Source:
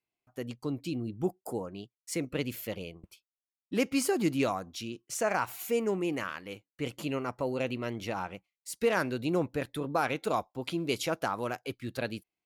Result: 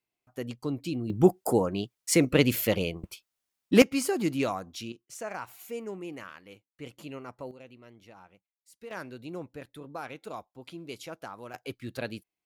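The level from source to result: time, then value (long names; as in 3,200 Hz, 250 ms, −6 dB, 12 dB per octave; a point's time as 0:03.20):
+2 dB
from 0:01.10 +11 dB
from 0:03.82 0 dB
from 0:04.92 −8 dB
from 0:07.51 −17.5 dB
from 0:08.91 −10 dB
from 0:11.54 −1 dB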